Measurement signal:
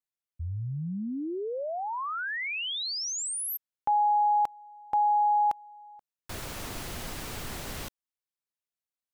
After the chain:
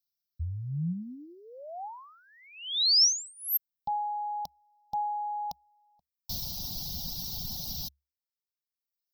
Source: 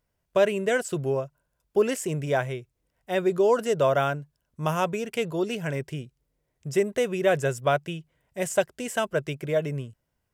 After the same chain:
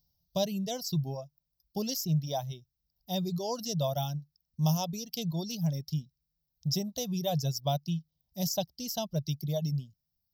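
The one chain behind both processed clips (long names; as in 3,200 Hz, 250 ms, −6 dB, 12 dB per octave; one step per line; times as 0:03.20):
drawn EQ curve 120 Hz 0 dB, 170 Hz +6 dB, 400 Hz −18 dB, 800 Hz −4 dB, 1,500 Hz −29 dB, 2,400 Hz −20 dB, 3,800 Hz +7 dB, 5,500 Hz +14 dB, 9,000 Hz −23 dB, 13,000 Hz +12 dB
reverb reduction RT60 1.2 s
parametric band 70 Hz +6.5 dB 0.24 octaves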